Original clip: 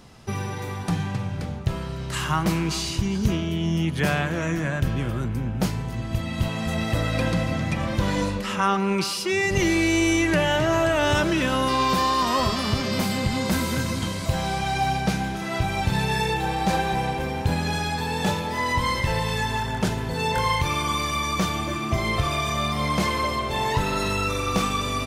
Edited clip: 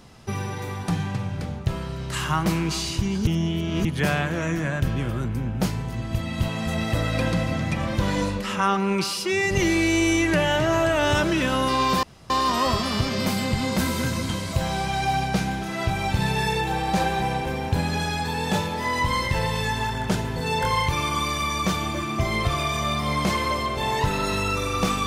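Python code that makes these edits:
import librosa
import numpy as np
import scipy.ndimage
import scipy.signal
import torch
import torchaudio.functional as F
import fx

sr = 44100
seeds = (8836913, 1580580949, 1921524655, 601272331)

y = fx.edit(x, sr, fx.reverse_span(start_s=3.27, length_s=0.58),
    fx.insert_room_tone(at_s=12.03, length_s=0.27), tone=tone)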